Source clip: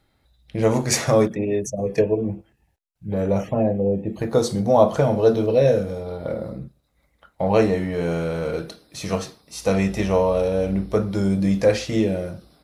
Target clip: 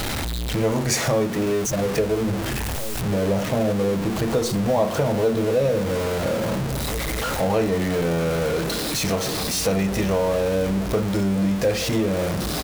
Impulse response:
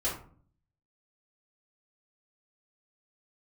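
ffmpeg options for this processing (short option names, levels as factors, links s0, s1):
-filter_complex "[0:a]aeval=exprs='val(0)+0.5*0.1*sgn(val(0))':c=same,acompressor=threshold=0.0794:ratio=2,asplit=2[s0][s1];[s1]adelay=1691,volume=0.224,highshelf=f=4000:g=-38[s2];[s0][s2]amix=inputs=2:normalize=0"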